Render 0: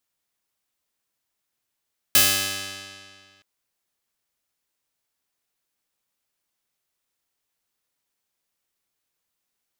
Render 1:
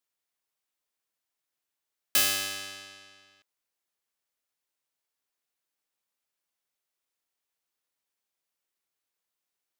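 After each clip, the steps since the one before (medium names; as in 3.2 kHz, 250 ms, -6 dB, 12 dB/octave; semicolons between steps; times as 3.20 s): tone controls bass -7 dB, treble -1 dB; trim -5.5 dB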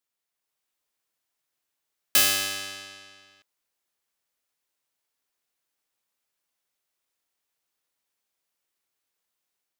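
level rider gain up to 4 dB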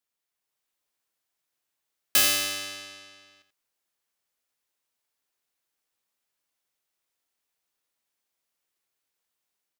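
delay 85 ms -10.5 dB; trim -1 dB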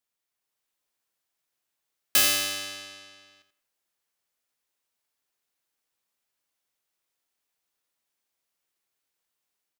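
speakerphone echo 180 ms, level -22 dB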